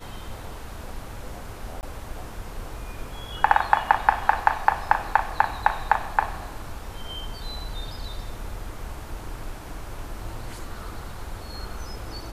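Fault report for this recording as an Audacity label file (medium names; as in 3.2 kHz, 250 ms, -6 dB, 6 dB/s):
1.810000	1.830000	dropout 19 ms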